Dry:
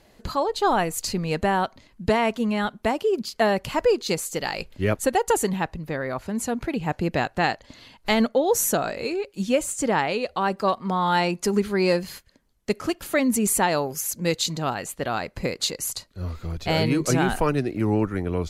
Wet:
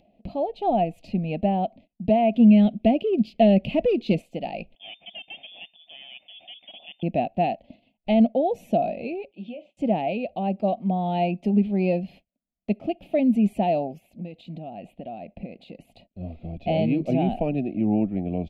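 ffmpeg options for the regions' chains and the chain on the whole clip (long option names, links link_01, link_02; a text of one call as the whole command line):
ffmpeg -i in.wav -filter_complex "[0:a]asettb=1/sr,asplit=3[link_01][link_02][link_03];[link_01]atrim=end=2.344[link_04];[link_02]atrim=start=2.34:end=4.22,asetpts=PTS-STARTPTS,afade=type=in:duration=0.004:curve=qsin,afade=type=out:start_time=1.876:duration=0.004:curve=qsin,equalizer=frequency=820:width=1.9:gain=-10.5,aeval=exprs='0.282*sin(PI/2*1.58*val(0)/0.282)':channel_layout=same[link_05];[link_03]atrim=start=4.216[link_06];[link_04][link_05]acrossfade=duration=0.004:curve1=hsin:curve2=qsin[link_07];[link_07][link_06]acrossfade=duration=0.004:curve1=qsin:curve2=hsin,asettb=1/sr,asplit=3[link_08][link_09][link_10];[link_08]atrim=end=4.754[link_11];[link_09]atrim=start=4.75:end=7.03,asetpts=PTS-STARTPTS,afade=type=in:duration=0.004:curve=qsin,afade=type=out:start_time=2.276:duration=0.004:curve=qsin,aeval=exprs='(tanh(22.4*val(0)+0.7)-tanh(0.7))/22.4':channel_layout=same,lowshelf=frequency=150:gain=-11.5,lowpass=frequency=3100:width_type=q:width=0.5098,lowpass=frequency=3100:width_type=q:width=0.6013,lowpass=frequency=3100:width_type=q:width=0.9,lowpass=frequency=3100:width_type=q:width=2.563,afreqshift=-3600[link_12];[link_10]atrim=start=7.026[link_13];[link_11][link_12]acrossfade=duration=0.004:curve1=hsin:curve2=qsin[link_14];[link_14][link_13]acrossfade=duration=0.004:curve1=qsin:curve2=hsin,asettb=1/sr,asplit=3[link_15][link_16][link_17];[link_15]atrim=end=9.314[link_18];[link_16]atrim=start=9.31:end=9.77,asetpts=PTS-STARTPTS,afade=type=in:duration=0.004:curve=qsin,afade=type=out:start_time=0.456:duration=0.004:curve=qsin,highpass=370,equalizer=frequency=1100:width_type=q:width=4:gain=-9,equalizer=frequency=1700:width_type=q:width=4:gain=-10,equalizer=frequency=3200:width_type=q:width=4:gain=4,lowpass=frequency=4300:width=0.5412,lowpass=frequency=4300:width=1.3066,acompressor=threshold=-34dB:ratio=5:attack=3.2:release=140:knee=1:detection=peak,asplit=2[link_19][link_20];[link_20]adelay=34,volume=-12dB[link_21];[link_19][link_21]amix=inputs=2:normalize=0,atrim=end_sample=20286[link_22];[link_17]atrim=start=9.766[link_23];[link_18][link_22]acrossfade=duration=0.004:curve1=hsin:curve2=qsin[link_24];[link_24][link_23]acrossfade=duration=0.004:curve1=qsin:curve2=hsin,asettb=1/sr,asplit=3[link_25][link_26][link_27];[link_25]atrim=end=13.984[link_28];[link_26]atrim=start=13.98:end=16.12,asetpts=PTS-STARTPTS,afade=type=in:duration=0.004:curve=qsin,afade=type=out:start_time=2.136:duration=0.004:curve=qsin,equalizer=frequency=5800:width=2.1:gain=-9.5,acompressor=threshold=-31dB:ratio=8:attack=3.2:release=140:knee=1:detection=peak[link_29];[link_27]atrim=start=16.116[link_30];[link_28][link_29]acrossfade=duration=0.004:curve1=hsin:curve2=qsin[link_31];[link_31][link_30]acrossfade=duration=0.004:curve1=qsin:curve2=hsin,agate=range=-24dB:threshold=-45dB:ratio=16:detection=peak,firequalizer=gain_entry='entry(120,0);entry(200,13);entry(430,-1);entry(690,14);entry(1000,-16);entry(1500,-25);entry(2500,4);entry(4500,-16);entry(6700,-29);entry(14000,-26)':delay=0.05:min_phase=1,acompressor=mode=upward:threshold=-38dB:ratio=2.5,volume=-7.5dB" out.wav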